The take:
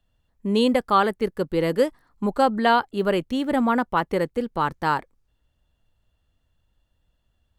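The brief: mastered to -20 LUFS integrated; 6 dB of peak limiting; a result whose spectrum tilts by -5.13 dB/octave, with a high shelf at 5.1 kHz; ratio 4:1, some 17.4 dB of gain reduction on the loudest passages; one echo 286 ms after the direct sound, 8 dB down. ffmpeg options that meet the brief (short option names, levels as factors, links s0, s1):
-af "highshelf=f=5100:g=-8.5,acompressor=threshold=0.0158:ratio=4,alimiter=level_in=1.58:limit=0.0631:level=0:latency=1,volume=0.631,aecho=1:1:286:0.398,volume=8.91"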